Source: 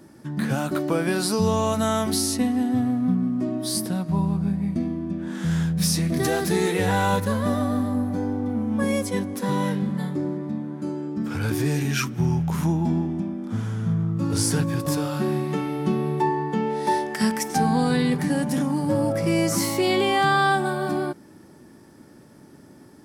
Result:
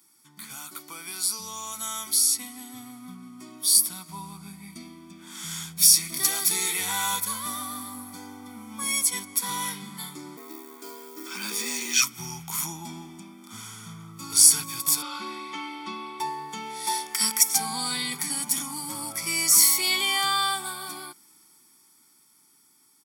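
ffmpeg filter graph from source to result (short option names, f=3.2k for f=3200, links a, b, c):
-filter_complex "[0:a]asettb=1/sr,asplit=3[a][b][c];[a]atrim=end=10.374[d];[b]atrim=start=10.37:end=12.02,asetpts=PTS-STARTPTS,afade=t=in:d=0.004:c=qsin,afade=t=out:st=1.646:d=0.004:c=qsin,lowpass=7.2k,afreqshift=100,acrusher=bits=9:mode=log:mix=0:aa=0.000001[e];[c]atrim=start=12.016[f];[d][e]acrossfade=d=0.004:c1=hsin:c2=qsin[g];[g][f]acrossfade=d=0.004:c1=qsin:c2=hsin,asettb=1/sr,asplit=3[h][i][j];[h]atrim=end=15.024[k];[i]atrim=start=15.02:end=16.2,asetpts=PTS-STARTPTS,afade=t=in:d=0.004:c=qsin,afade=t=out:st=1.176:d=0.004:c=qsin,highpass=200,lowpass=3.5k,aecho=1:1:3.5:0.8,atrim=end_sample=52038[l];[j]atrim=start=16.196[m];[k][l]acrossfade=d=0.004:c1=hsin:c2=qsin[n];[n][m]acrossfade=d=0.004:c1=qsin:c2=hsin,aderivative,aecho=1:1:0.9:0.78,dynaudnorm=f=530:g=11:m=11.5dB"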